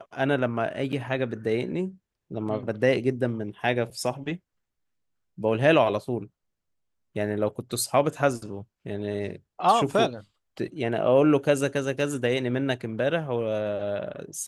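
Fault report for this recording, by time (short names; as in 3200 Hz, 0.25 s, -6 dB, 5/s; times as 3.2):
0.92–0.93 gap 7.4 ms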